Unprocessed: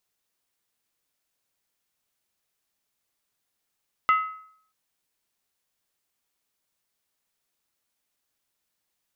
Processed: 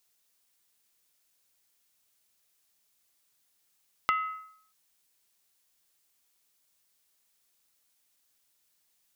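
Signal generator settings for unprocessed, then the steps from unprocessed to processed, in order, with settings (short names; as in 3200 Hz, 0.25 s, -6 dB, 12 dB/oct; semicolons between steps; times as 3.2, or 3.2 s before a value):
skin hit, lowest mode 1280 Hz, decay 0.62 s, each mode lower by 9 dB, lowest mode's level -14.5 dB
high shelf 2900 Hz +8.5 dB; compressor 6:1, threshold -25 dBFS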